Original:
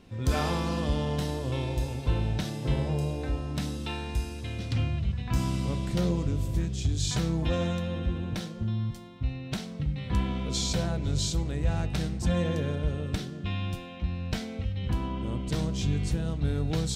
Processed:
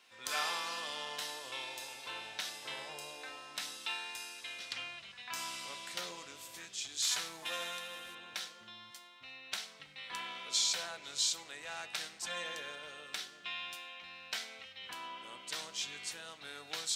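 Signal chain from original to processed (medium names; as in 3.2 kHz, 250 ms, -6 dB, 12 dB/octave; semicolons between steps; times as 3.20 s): 7.02–8.15 s: CVSD coder 64 kbps; high-pass 1.3 kHz 12 dB/octave; trim +1 dB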